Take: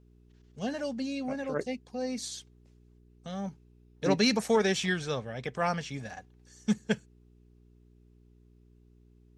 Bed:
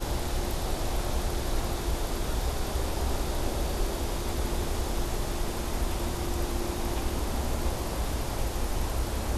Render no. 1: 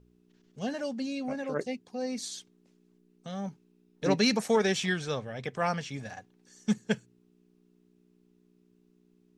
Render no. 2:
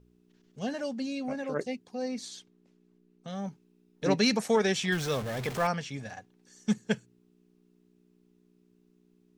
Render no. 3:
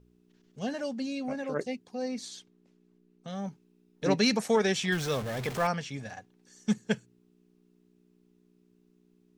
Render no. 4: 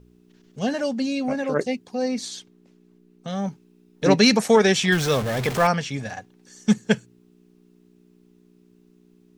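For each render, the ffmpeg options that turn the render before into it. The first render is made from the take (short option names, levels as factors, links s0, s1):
-af "bandreject=f=60:t=h:w=4,bandreject=f=120:t=h:w=4"
-filter_complex "[0:a]asettb=1/sr,asplit=3[s0][s1][s2];[s0]atrim=end=2.084[s3];[s1]atrim=start=2.08:end=3.28,asetpts=PTS-STARTPTS,afade=t=in:d=0.004:c=qsin,afade=t=out:st=1.196:d=0.004:c=qsin,highshelf=f=5600:g=-9[s4];[s2]atrim=start=3.276[s5];[s3][s4]acrossfade=d=0.004:c1=hsin:c2=qsin[s6];[s6][s5]acrossfade=d=0.004:c1=qsin:c2=hsin,asettb=1/sr,asplit=3[s7][s8][s9];[s7]atrim=end=4.924[s10];[s8]atrim=start=4.92:end=5.67,asetpts=PTS-STARTPTS,afade=t=in:d=0.004:c=qsin,afade=t=out:st=0.746:d=0.004:c=qsin,aeval=exprs='val(0)+0.5*0.0211*sgn(val(0))':c=same[s11];[s9]atrim=start=5.666[s12];[s10][s11]acrossfade=d=0.004:c1=hsin:c2=qsin[s13];[s13][s12]acrossfade=d=0.004:c1=qsin:c2=hsin"
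-af anull
-af "volume=2.82"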